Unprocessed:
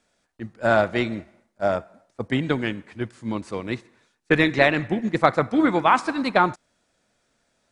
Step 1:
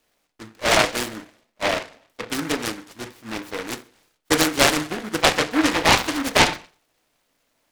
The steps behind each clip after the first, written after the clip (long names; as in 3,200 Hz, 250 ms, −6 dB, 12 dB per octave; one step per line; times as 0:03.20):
parametric band 88 Hz −15 dB 2.9 octaves
feedback delay network reverb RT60 0.38 s, low-frequency decay 0.85×, high-frequency decay 0.3×, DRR 5.5 dB
short delay modulated by noise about 1,300 Hz, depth 0.23 ms
level +1 dB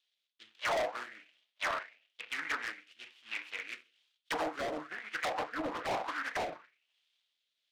envelope filter 670–3,500 Hz, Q 4, down, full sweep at −14 dBFS
hard clipping −30 dBFS, distortion −4 dB
rotating-speaker cabinet horn 1.1 Hz
level +2 dB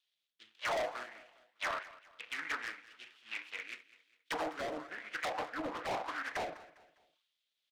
repeating echo 202 ms, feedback 40%, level −18.5 dB
level −2.5 dB